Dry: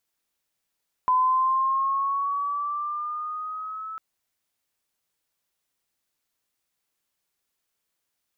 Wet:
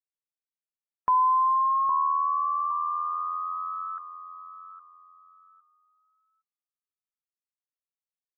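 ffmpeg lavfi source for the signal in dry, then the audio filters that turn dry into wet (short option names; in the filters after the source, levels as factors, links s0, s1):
-f lavfi -i "aevalsrc='pow(10,(-17-15.5*t/2.9)/20)*sin(2*PI*1010*2.9/(4.5*log(2)/12)*(exp(4.5*log(2)/12*t/2.9)-1))':d=2.9:s=44100"
-filter_complex "[0:a]asplit=2[s0][s1];[s1]adelay=812,lowpass=f=1100:p=1,volume=0.422,asplit=2[s2][s3];[s3]adelay=812,lowpass=f=1100:p=1,volume=0.41,asplit=2[s4][s5];[s5]adelay=812,lowpass=f=1100:p=1,volume=0.41,asplit=2[s6][s7];[s7]adelay=812,lowpass=f=1100:p=1,volume=0.41,asplit=2[s8][s9];[s9]adelay=812,lowpass=f=1100:p=1,volume=0.41[s10];[s0][s2][s4][s6][s8][s10]amix=inputs=6:normalize=0,afftdn=nr=35:nf=-51"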